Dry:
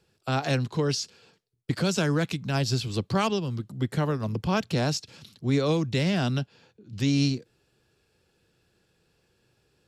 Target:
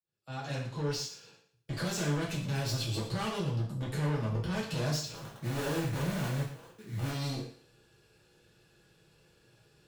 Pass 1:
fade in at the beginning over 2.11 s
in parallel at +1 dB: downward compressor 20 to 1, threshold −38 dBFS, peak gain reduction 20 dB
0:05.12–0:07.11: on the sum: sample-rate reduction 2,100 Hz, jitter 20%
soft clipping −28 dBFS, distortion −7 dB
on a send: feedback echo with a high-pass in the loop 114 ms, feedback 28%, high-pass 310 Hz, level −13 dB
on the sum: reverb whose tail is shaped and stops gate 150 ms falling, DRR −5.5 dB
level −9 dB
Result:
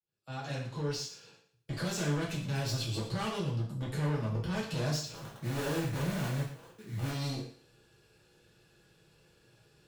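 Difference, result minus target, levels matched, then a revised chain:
downward compressor: peak gain reduction +8.5 dB
fade in at the beginning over 2.11 s
in parallel at +1 dB: downward compressor 20 to 1, threshold −29 dBFS, peak gain reduction 11.5 dB
0:05.12–0:07.11: on the sum: sample-rate reduction 2,100 Hz, jitter 20%
soft clipping −28 dBFS, distortion −6 dB
on a send: feedback echo with a high-pass in the loop 114 ms, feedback 28%, high-pass 310 Hz, level −13 dB
on the sum: reverb whose tail is shaped and stops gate 150 ms falling, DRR −5.5 dB
level −9 dB

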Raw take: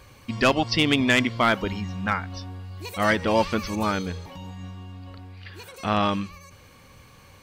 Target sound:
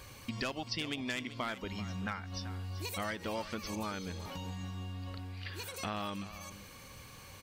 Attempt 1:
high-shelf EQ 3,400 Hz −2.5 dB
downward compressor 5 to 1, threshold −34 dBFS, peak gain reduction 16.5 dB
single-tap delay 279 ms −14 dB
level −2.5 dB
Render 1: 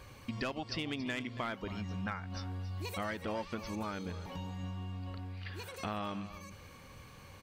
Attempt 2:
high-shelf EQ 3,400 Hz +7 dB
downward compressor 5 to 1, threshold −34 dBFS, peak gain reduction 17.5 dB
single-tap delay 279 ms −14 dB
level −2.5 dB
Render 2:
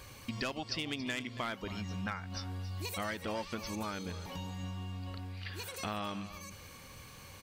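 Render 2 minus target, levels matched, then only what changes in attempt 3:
echo 106 ms early
change: single-tap delay 385 ms −14 dB

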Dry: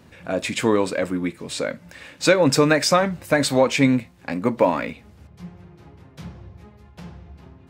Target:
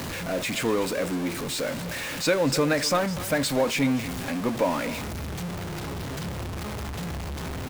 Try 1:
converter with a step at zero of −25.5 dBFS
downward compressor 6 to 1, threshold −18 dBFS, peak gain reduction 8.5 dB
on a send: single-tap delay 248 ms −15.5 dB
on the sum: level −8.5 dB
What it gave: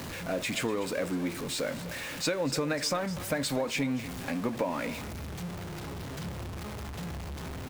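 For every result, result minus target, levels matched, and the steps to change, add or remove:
downward compressor: peak gain reduction +8.5 dB; converter with a step at zero: distortion −5 dB
remove: downward compressor 6 to 1, threshold −18 dBFS, peak gain reduction 8.5 dB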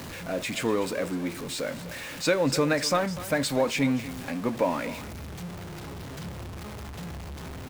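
converter with a step at zero: distortion −5 dB
change: converter with a step at zero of −19 dBFS

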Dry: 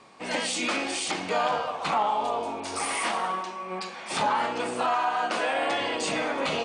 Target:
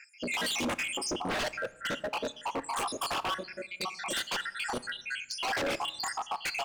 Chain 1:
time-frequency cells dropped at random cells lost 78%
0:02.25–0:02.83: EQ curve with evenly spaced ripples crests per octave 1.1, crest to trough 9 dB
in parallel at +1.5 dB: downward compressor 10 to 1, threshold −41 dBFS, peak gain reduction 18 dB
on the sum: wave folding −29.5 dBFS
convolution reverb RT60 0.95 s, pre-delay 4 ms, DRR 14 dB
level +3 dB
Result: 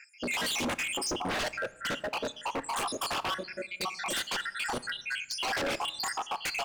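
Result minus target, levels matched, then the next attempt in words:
downward compressor: peak gain reduction −7 dB
time-frequency cells dropped at random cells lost 78%
0:02.25–0:02.83: EQ curve with evenly spaced ripples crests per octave 1.1, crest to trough 9 dB
in parallel at +1.5 dB: downward compressor 10 to 1, threshold −48.5 dBFS, peak gain reduction 25 dB
on the sum: wave folding −29.5 dBFS
convolution reverb RT60 0.95 s, pre-delay 4 ms, DRR 14 dB
level +3 dB

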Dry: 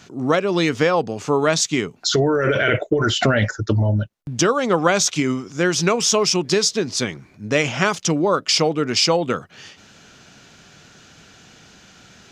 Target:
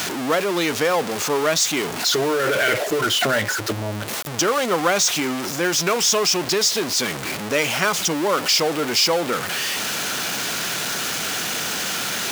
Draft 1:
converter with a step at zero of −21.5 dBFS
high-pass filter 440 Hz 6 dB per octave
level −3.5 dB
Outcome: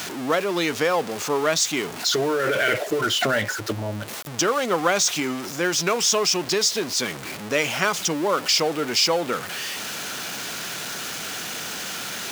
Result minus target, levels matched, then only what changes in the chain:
converter with a step at zero: distortion −5 dB
change: converter with a step at zero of −15 dBFS

